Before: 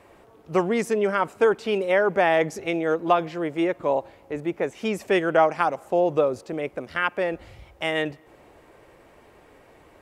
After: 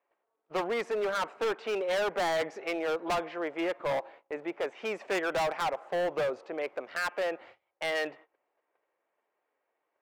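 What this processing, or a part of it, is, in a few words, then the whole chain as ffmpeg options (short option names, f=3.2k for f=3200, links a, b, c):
walkie-talkie: -af "highpass=550,lowpass=2.5k,asoftclip=type=hard:threshold=-26.5dB,agate=range=-25dB:threshold=-51dB:ratio=16:detection=peak"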